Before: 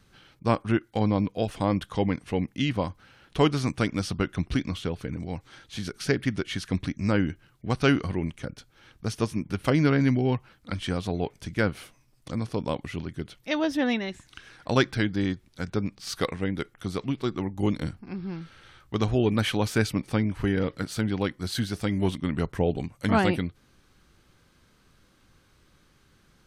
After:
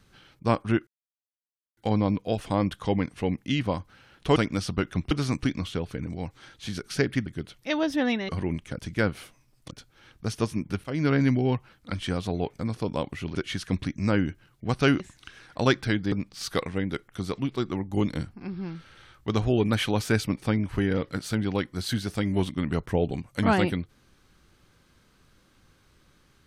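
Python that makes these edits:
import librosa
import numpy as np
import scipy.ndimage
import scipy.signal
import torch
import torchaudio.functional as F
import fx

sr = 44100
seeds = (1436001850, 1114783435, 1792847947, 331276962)

y = fx.edit(x, sr, fx.insert_silence(at_s=0.87, length_s=0.9),
    fx.move(start_s=3.46, length_s=0.32, to_s=4.53),
    fx.swap(start_s=6.36, length_s=1.65, other_s=13.07, other_length_s=1.03),
    fx.fade_in_from(start_s=9.64, length_s=0.3, floor_db=-19.0),
    fx.move(start_s=11.39, length_s=0.92, to_s=8.51),
    fx.cut(start_s=15.22, length_s=0.56), tone=tone)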